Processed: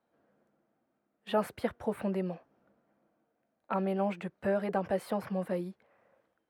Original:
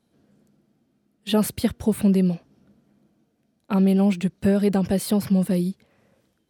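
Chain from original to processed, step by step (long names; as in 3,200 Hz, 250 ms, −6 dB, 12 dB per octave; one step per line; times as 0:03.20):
three-way crossover with the lows and the highs turned down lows −18 dB, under 450 Hz, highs −21 dB, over 2,000 Hz
notch filter 410 Hz, Q 12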